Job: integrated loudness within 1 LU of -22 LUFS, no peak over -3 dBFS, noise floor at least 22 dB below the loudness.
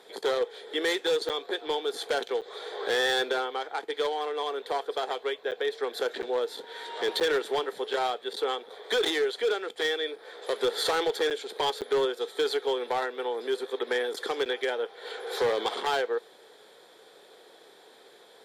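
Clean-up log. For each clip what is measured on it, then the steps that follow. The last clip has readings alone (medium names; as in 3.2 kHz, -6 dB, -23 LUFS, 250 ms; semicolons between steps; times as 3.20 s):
clipped samples 0.9%; clipping level -20.5 dBFS; dropouts 8; longest dropout 7.9 ms; loudness -29.5 LUFS; peak level -20.5 dBFS; loudness target -22.0 LUFS
-> clip repair -20.5 dBFS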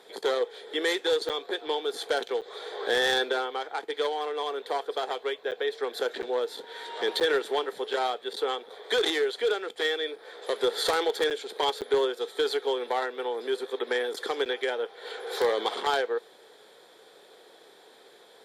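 clipped samples 0.0%; dropouts 8; longest dropout 7.9 ms
-> interpolate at 1.29/2.41/5.51/6.22/7.20/11.30/11.81/14.45 s, 7.9 ms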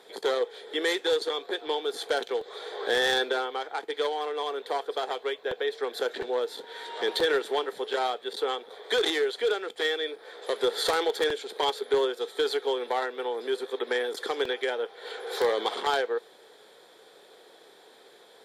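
dropouts 0; loudness -29.0 LUFS; peak level -11.5 dBFS; loudness target -22.0 LUFS
-> trim +7 dB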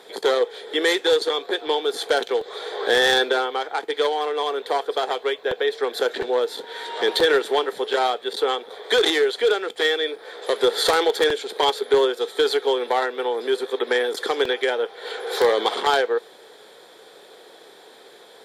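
loudness -22.0 LUFS; peak level -4.5 dBFS; noise floor -48 dBFS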